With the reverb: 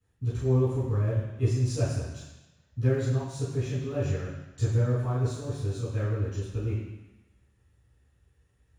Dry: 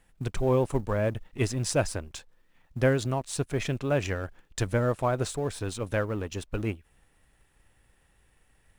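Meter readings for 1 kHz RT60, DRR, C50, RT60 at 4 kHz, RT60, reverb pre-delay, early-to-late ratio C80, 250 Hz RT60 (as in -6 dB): 1.2 s, -18.0 dB, 0.5 dB, 1.2 s, 1.0 s, 6 ms, 3.5 dB, 1.1 s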